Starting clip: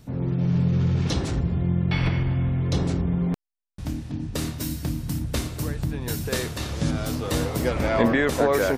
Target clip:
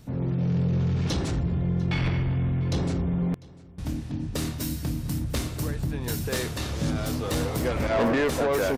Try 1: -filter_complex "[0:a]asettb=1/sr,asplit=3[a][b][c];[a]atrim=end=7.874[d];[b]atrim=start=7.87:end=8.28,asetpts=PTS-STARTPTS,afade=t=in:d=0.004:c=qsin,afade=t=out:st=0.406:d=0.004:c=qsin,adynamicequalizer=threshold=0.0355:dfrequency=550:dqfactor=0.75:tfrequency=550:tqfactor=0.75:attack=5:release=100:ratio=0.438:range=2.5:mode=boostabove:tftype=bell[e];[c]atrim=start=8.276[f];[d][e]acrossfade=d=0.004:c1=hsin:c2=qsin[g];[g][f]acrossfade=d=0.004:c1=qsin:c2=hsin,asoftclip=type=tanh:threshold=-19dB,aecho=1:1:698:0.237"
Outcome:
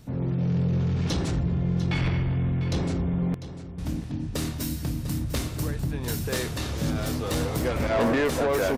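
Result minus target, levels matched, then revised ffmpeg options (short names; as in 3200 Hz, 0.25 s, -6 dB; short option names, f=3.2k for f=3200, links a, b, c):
echo-to-direct +9.5 dB
-filter_complex "[0:a]asettb=1/sr,asplit=3[a][b][c];[a]atrim=end=7.874[d];[b]atrim=start=7.87:end=8.28,asetpts=PTS-STARTPTS,afade=t=in:d=0.004:c=qsin,afade=t=out:st=0.406:d=0.004:c=qsin,adynamicequalizer=threshold=0.0355:dfrequency=550:dqfactor=0.75:tfrequency=550:tqfactor=0.75:attack=5:release=100:ratio=0.438:range=2.5:mode=boostabove:tftype=bell[e];[c]atrim=start=8.276[f];[d][e]acrossfade=d=0.004:c1=hsin:c2=qsin[g];[g][f]acrossfade=d=0.004:c1=qsin:c2=hsin,asoftclip=type=tanh:threshold=-19dB,aecho=1:1:698:0.0794"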